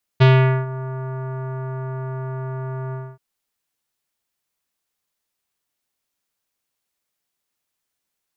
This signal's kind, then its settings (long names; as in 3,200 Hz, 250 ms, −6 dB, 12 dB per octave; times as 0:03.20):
subtractive voice square C3 24 dB per octave, low-pass 1,400 Hz, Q 1.2, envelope 1.5 octaves, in 0.49 s, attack 17 ms, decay 0.44 s, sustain −18 dB, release 0.25 s, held 2.73 s